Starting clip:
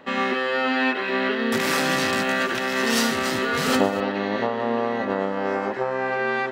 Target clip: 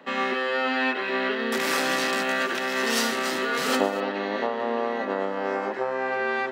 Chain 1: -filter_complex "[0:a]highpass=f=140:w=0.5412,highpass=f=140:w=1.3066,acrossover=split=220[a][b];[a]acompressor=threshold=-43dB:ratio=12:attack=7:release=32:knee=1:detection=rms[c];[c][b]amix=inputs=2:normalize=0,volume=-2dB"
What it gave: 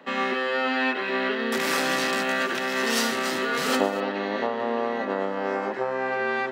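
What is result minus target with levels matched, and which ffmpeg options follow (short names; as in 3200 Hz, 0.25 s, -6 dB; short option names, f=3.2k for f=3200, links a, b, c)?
compressor: peak gain reduction -7 dB
-filter_complex "[0:a]highpass=f=140:w=0.5412,highpass=f=140:w=1.3066,acrossover=split=220[a][b];[a]acompressor=threshold=-50.5dB:ratio=12:attack=7:release=32:knee=1:detection=rms[c];[c][b]amix=inputs=2:normalize=0,volume=-2dB"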